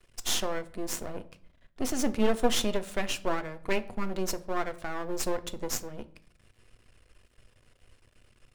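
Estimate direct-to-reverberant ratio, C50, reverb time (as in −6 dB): 10.0 dB, 18.0 dB, 0.55 s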